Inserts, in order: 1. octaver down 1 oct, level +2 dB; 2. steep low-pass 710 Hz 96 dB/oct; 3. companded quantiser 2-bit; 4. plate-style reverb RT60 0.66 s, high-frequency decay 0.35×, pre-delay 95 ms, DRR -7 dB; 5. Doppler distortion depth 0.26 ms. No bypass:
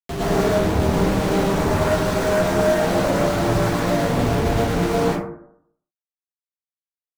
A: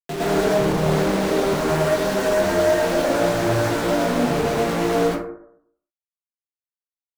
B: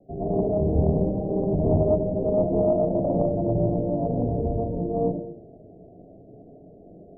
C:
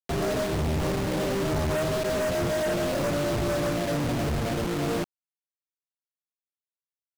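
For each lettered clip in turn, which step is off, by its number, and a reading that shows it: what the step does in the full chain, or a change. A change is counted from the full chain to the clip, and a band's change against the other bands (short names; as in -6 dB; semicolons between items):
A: 1, 125 Hz band -4.5 dB; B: 3, distortion -5 dB; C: 4, crest factor change -11.0 dB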